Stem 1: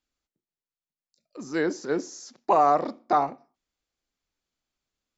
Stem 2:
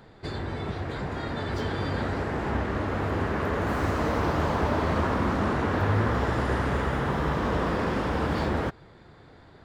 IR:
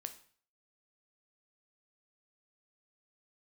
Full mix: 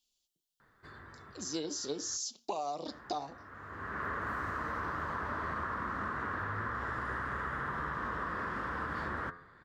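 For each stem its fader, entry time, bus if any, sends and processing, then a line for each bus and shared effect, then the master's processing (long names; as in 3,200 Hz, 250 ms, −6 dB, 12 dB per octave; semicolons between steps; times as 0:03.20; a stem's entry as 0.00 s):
−3.5 dB, 0.00 s, send −14.5 dB, drawn EQ curve 930 Hz 0 dB, 1,800 Hz −16 dB, 3,000 Hz +15 dB; flanger 0.82 Hz, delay 4.3 ms, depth 3 ms, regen +55%
−12.5 dB, 0.60 s, muted 0:02.17–0:02.86, send −18 dB, flat-topped bell 1,400 Hz +13 dB 1.1 octaves; hum removal 86.5 Hz, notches 25; automatic ducking −22 dB, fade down 1.80 s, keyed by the first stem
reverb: on, RT60 0.50 s, pre-delay 6 ms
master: downward compressor 10 to 1, threshold −33 dBFS, peak gain reduction 11.5 dB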